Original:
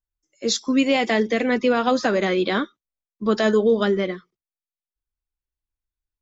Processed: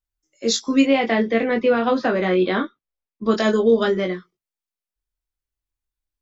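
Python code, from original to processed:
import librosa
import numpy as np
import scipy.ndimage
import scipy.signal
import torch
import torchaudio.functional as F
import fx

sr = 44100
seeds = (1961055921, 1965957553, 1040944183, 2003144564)

y = fx.gaussian_blur(x, sr, sigma=2.1, at=(0.84, 3.25))
y = fx.doubler(y, sr, ms=22.0, db=-4.5)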